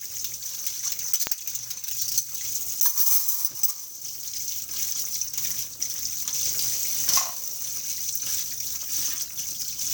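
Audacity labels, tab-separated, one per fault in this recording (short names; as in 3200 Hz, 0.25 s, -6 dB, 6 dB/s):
1.270000	1.270000	pop -4 dBFS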